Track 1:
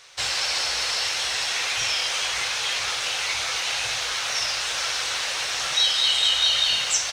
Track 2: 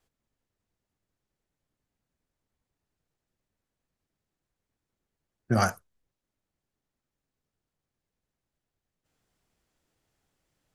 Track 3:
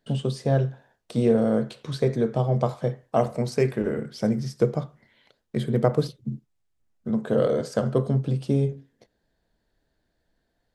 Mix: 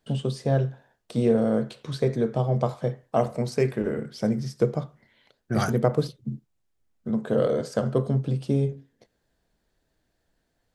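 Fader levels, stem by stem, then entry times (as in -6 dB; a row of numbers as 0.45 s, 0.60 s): mute, -3.0 dB, -1.0 dB; mute, 0.00 s, 0.00 s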